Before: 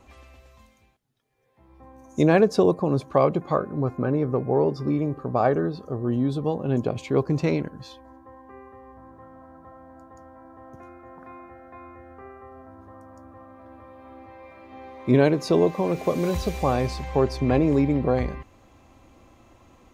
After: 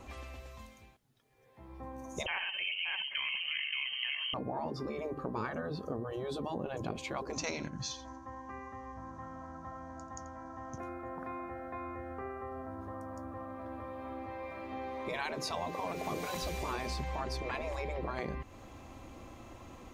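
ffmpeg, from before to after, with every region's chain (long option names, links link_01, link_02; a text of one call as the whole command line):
ffmpeg -i in.wav -filter_complex "[0:a]asettb=1/sr,asplit=3[link_01][link_02][link_03];[link_01]atrim=end=2.264[link_04];[link_02]atrim=start=2.26:end=4.34,asetpts=PTS-STARTPTS,afade=type=in:duration=0.004:curve=qsin,afade=type=out:start_time=2.076:duration=0.004:curve=qsin,lowshelf=frequency=260:gain=-9.5,aecho=1:1:62|115|575:0.211|0.266|0.422,atrim=end_sample=91728,lowpass=frequency=2800:width_type=q:width=0.5098,lowpass=frequency=2800:width_type=q:width=0.6013,lowpass=frequency=2800:width_type=q:width=0.9,lowpass=frequency=2800:width_type=q:width=2.563,afreqshift=-3300[link_05];[link_03]atrim=start=4.336[link_06];[link_04][link_05]acrossfade=duration=0.004:curve1=hsin:curve2=qsin[link_07];[link_07][link_06]acrossfade=duration=0.004:curve1=qsin:curve2=hsin,asettb=1/sr,asplit=3[link_08][link_09][link_10];[link_08]atrim=end=7.334[link_11];[link_09]atrim=start=7.33:end=10.78,asetpts=PTS-STARTPTS,afade=type=in:duration=0.004:curve=qsin,afade=type=out:start_time=3.446:duration=0.004:curve=qsin,lowpass=frequency=6200:width_type=q:width=6.8,equalizer=frequency=440:width_type=o:width=0.55:gain=-14,aecho=1:1:86:0.168,atrim=end_sample=152145[link_12];[link_10]atrim=start=10.776[link_13];[link_11][link_12]acrossfade=duration=0.004:curve1=hsin:curve2=qsin[link_14];[link_14][link_13]acrossfade=duration=0.004:curve1=qsin:curve2=hsin,afftfilt=real='re*lt(hypot(re,im),0.251)':imag='im*lt(hypot(re,im),0.251)':win_size=1024:overlap=0.75,acompressor=threshold=-41dB:ratio=2.5,volume=3.5dB" out.wav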